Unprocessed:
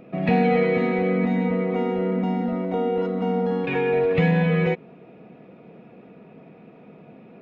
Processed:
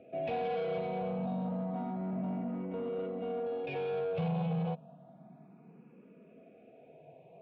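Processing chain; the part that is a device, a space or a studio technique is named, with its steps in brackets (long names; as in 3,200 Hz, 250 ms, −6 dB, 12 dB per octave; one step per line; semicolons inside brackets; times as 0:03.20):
barber-pole phaser into a guitar amplifier (frequency shifter mixed with the dry sound +0.3 Hz; soft clipping −24 dBFS, distortion −11 dB; loudspeaker in its box 84–3,800 Hz, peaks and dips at 150 Hz +6 dB, 330 Hz −5 dB, 660 Hz +9 dB, 1,300 Hz −5 dB, 1,900 Hz −10 dB)
level −8 dB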